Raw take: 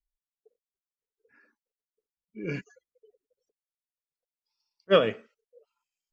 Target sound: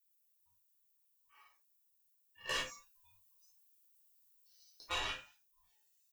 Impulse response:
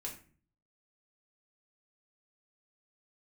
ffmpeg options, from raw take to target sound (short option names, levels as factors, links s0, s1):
-filter_complex "[0:a]highpass=1400,aemphasis=mode=production:type=riaa,aecho=1:1:7.3:0.53,alimiter=level_in=1.26:limit=0.0631:level=0:latency=1:release=99,volume=0.794,asettb=1/sr,asplit=3[s0][s1][s2];[s0]atrim=end=2.494[s3];[s1]atrim=start=2.49:end=4.92,asetpts=PTS-STARTPTS,afade=t=in:d=0.004:c=qsin,afade=t=out:st=2.426:d=0.004:c=qsin,acontrast=29[s4];[s2]atrim=start=4.916[s5];[s3][s4]acrossfade=d=0.004:c1=hsin:c2=qsin[s6];[s6][s5]acrossfade=d=0.004:c1=qsin:c2=hsin,aeval=exprs='(tanh(39.8*val(0)+0.75)-tanh(0.75))/39.8':c=same,flanger=delay=15:depth=4.2:speed=0.77,aeval=exprs='val(0)*sin(2*PI*520*n/s)':c=same,asuperstop=centerf=2100:order=4:qfactor=7.7[s7];[1:a]atrim=start_sample=2205,atrim=end_sample=4410[s8];[s7][s8]afir=irnorm=-1:irlink=0,volume=3.76"